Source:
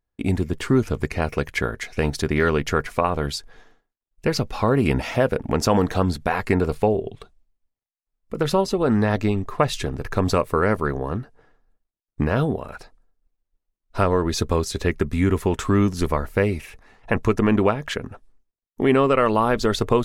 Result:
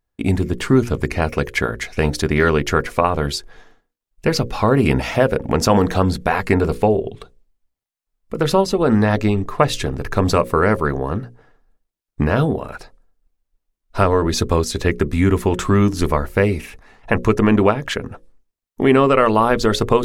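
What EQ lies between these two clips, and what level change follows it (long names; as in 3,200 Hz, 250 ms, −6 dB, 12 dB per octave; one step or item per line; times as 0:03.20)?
mains-hum notches 60/120/180/240/300/360/420/480/540 Hz
+4.5 dB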